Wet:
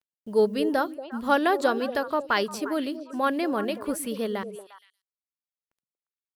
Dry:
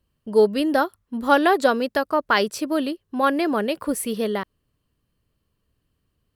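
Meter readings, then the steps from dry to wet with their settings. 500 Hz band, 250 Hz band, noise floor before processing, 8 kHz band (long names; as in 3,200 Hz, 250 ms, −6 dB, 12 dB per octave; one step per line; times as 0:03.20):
−4.5 dB, −4.5 dB, −74 dBFS, −5.0 dB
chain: bit reduction 10 bits
echo through a band-pass that steps 117 ms, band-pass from 170 Hz, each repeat 1.4 octaves, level −6 dB
level −5 dB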